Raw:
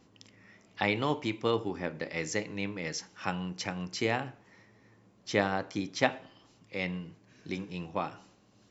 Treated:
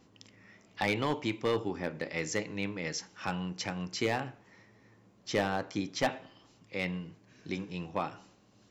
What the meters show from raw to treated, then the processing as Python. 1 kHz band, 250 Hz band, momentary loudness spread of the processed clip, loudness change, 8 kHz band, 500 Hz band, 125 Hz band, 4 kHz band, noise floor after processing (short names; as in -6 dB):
-1.0 dB, -0.5 dB, 10 LU, -1.0 dB, n/a, -1.0 dB, -0.5 dB, -0.5 dB, -63 dBFS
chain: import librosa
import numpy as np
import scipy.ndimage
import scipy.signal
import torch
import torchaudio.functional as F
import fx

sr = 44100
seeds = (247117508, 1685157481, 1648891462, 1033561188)

y = np.clip(x, -10.0 ** (-21.0 / 20.0), 10.0 ** (-21.0 / 20.0))